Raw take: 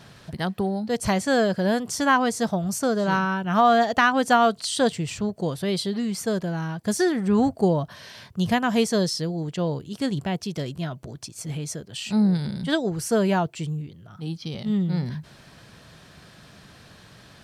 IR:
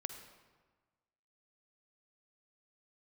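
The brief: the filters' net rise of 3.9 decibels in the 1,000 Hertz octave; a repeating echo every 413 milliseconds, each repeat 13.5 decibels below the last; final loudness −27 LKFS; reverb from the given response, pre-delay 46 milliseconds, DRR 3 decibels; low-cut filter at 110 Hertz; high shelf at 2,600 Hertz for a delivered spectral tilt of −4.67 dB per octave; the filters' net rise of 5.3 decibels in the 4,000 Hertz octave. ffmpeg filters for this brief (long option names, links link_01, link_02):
-filter_complex "[0:a]highpass=110,equalizer=frequency=1000:width_type=o:gain=5.5,highshelf=frequency=2600:gain=-3,equalizer=frequency=4000:width_type=o:gain=9,aecho=1:1:413|826:0.211|0.0444,asplit=2[link_01][link_02];[1:a]atrim=start_sample=2205,adelay=46[link_03];[link_02][link_03]afir=irnorm=-1:irlink=0,volume=-1.5dB[link_04];[link_01][link_04]amix=inputs=2:normalize=0,volume=-7dB"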